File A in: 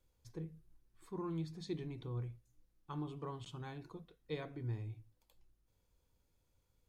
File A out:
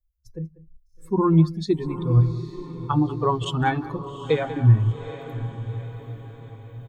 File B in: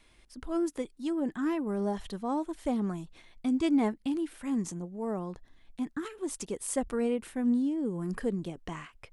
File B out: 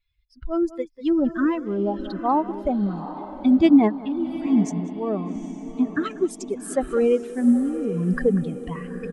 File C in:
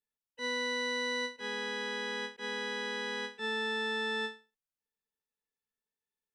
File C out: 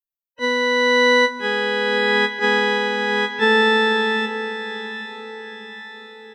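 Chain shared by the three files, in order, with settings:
per-bin expansion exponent 2; recorder AGC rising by 5.8 dB/s; high shelf 3300 Hz -11 dB; outdoor echo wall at 33 m, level -17 dB; tremolo 0.84 Hz, depth 45%; on a send: diffused feedback echo 0.82 s, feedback 47%, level -12 dB; on the sum: normalise peaks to -6 dBFS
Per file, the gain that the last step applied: +19.5, +14.5, +20.0 dB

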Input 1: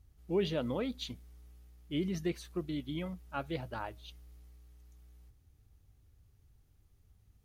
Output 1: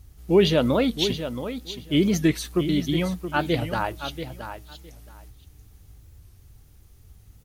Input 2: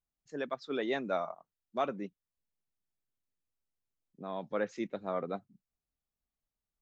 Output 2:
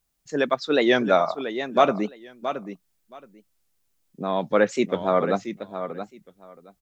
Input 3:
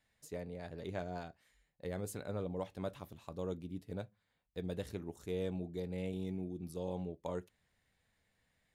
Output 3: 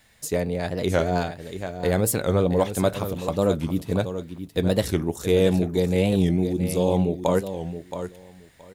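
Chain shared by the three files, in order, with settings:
high shelf 4500 Hz +5.5 dB; feedback echo 0.673 s, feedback 16%, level -10 dB; record warp 45 rpm, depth 160 cents; match loudness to -24 LUFS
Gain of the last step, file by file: +13.5, +14.0, +18.5 dB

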